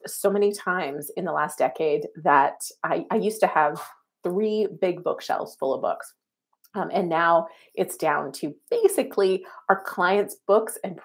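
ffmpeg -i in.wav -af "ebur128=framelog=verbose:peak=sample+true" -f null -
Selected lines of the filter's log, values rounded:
Integrated loudness:
  I:         -24.4 LUFS
  Threshold: -34.7 LUFS
Loudness range:
  LRA:         2.9 LU
  Threshold: -45.0 LUFS
  LRA low:   -26.8 LUFS
  LRA high:  -23.9 LUFS
Sample peak:
  Peak:       -2.4 dBFS
True peak:
  Peak:       -2.4 dBFS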